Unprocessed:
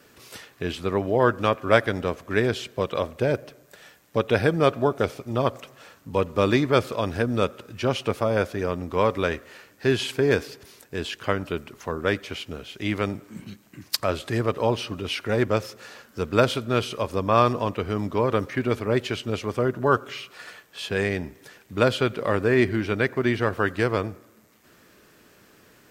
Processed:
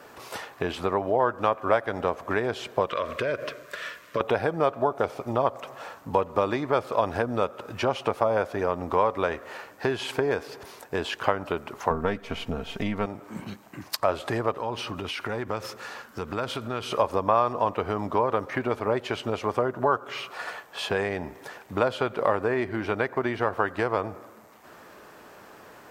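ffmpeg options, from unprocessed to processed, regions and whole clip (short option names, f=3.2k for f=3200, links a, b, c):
-filter_complex "[0:a]asettb=1/sr,asplit=3[a][b][c];[a]atrim=end=2.894[d];[b]atrim=start=2.89:end=4.21,asetpts=PTS-STARTPTS,afade=t=in:d=0.004:c=qsin,afade=t=out:st=1.316:d=0.004:c=qsin,equalizer=f=2.5k:w=0.46:g=10,acompressor=threshold=-29dB:ratio=5:attack=3.2:release=140:knee=1:detection=peak,asuperstop=centerf=810:order=4:qfactor=2.3[e];[c]atrim=start=4.206[f];[d][e]acrossfade=d=0.004:c1=hsin:c2=qsin[g];[g][f]acrossfade=d=0.004:c1=qsin:c2=hsin,asettb=1/sr,asplit=3[h][i][j];[h]atrim=end=11.904[k];[i]atrim=start=11.9:end=13.06,asetpts=PTS-STARTPTS,afade=t=in:d=0.004:c=qsin,afade=t=out:st=1.156:d=0.004:c=qsin,aeval=exprs='if(lt(val(0),0),0.708*val(0),val(0))':c=same,bass=f=250:g=13,treble=f=4k:g=-1,aecho=1:1:4.4:0.58,atrim=end_sample=51156[l];[j]atrim=start=13.056[m];[k][l]acrossfade=d=0.004:c1=hsin:c2=qsin[n];[n][m]acrossfade=d=0.004:c1=qsin:c2=hsin,asettb=1/sr,asplit=3[o][p][q];[o]atrim=end=14.574[r];[p]atrim=start=14.57:end=16.92,asetpts=PTS-STARTPTS,afade=t=in:d=0.004:c=qsin,afade=t=out:st=2.346:d=0.004:c=qsin,equalizer=f=650:t=o:w=1.2:g=-7.5,acompressor=threshold=-32dB:ratio=4:attack=3.2:release=140:knee=1:detection=peak[s];[q]atrim=start=16.916[t];[r][s]acrossfade=d=0.004:c1=hsin:c2=qsin[u];[u][t]acrossfade=d=0.004:c1=qsin:c2=hsin,acompressor=threshold=-29dB:ratio=5,equalizer=f=840:t=o:w=1.7:g=14.5"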